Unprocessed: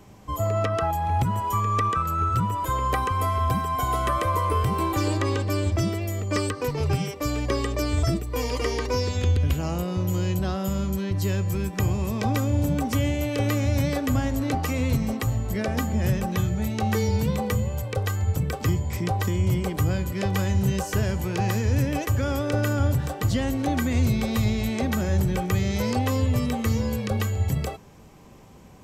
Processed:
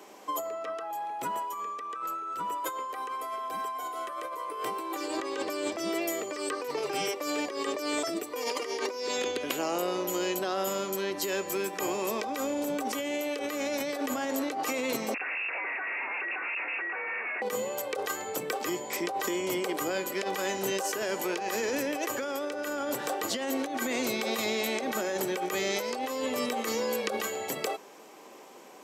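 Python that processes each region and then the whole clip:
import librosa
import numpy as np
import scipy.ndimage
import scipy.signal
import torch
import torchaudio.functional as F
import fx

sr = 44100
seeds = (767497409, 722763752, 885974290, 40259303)

y = fx.chain(x, sr, fx.bessel_highpass(hz=900.0, order=4),
    fx.schmitt(flips_db=-40.0),
    fx.freq_invert(carrier_hz=2700), at=(15.14, 17.42))
y = scipy.signal.sosfilt(scipy.signal.butter(4, 330.0, 'highpass', fs=sr, output='sos'), y)
y = fx.over_compress(y, sr, threshold_db=-33.0, ratio=-1.0)
y = F.gain(torch.from_numpy(y), 1.0).numpy()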